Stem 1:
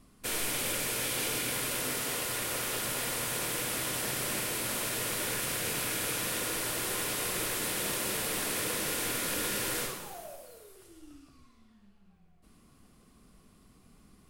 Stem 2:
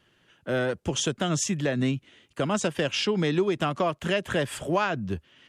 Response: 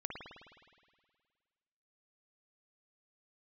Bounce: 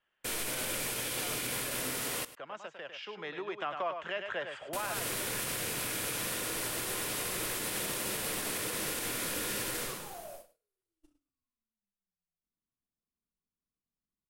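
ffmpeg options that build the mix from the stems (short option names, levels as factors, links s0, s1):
-filter_complex "[0:a]agate=range=0.0141:threshold=0.00501:ratio=16:detection=peak,volume=0.891,asplit=3[s0][s1][s2];[s0]atrim=end=2.25,asetpts=PTS-STARTPTS,afade=t=out:st=2.246:d=0.004:c=hsin[s3];[s1]atrim=start=2.25:end=4.73,asetpts=PTS-STARTPTS,volume=0[s4];[s2]atrim=start=4.73,asetpts=PTS-STARTPTS,afade=t=in:d=0.004:c=hsin[s5];[s3][s4][s5]concat=n=3:v=0:a=1,asplit=2[s6][s7];[s7]volume=0.141[s8];[1:a]lowpass=f=7600:w=0.5412,lowpass=f=7600:w=1.3066,acrossover=split=530 3100:gain=0.0794 1 0.141[s9][s10][s11];[s9][s10][s11]amix=inputs=3:normalize=0,volume=0.596,afade=t=in:st=2.99:d=0.47:silence=0.398107,asplit=2[s12][s13];[s13]volume=0.398[s14];[s8][s14]amix=inputs=2:normalize=0,aecho=0:1:102:1[s15];[s6][s12][s15]amix=inputs=3:normalize=0,alimiter=level_in=1.12:limit=0.0631:level=0:latency=1:release=66,volume=0.891"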